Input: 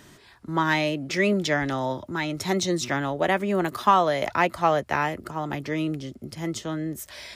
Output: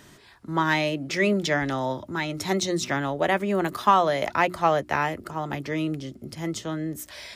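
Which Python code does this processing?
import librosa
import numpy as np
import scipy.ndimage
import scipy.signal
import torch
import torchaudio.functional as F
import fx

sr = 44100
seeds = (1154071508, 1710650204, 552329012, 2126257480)

y = fx.hum_notches(x, sr, base_hz=60, count=6)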